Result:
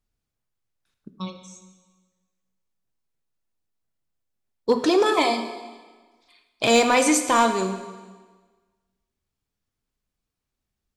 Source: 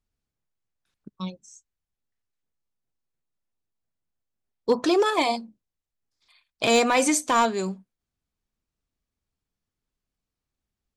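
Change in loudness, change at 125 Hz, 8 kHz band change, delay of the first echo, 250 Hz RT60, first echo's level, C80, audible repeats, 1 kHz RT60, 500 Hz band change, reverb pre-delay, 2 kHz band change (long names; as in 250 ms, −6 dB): +2.5 dB, can't be measured, +2.0 dB, no echo audible, 1.4 s, no echo audible, 10.0 dB, no echo audible, 1.4 s, +2.5 dB, 4 ms, +2.5 dB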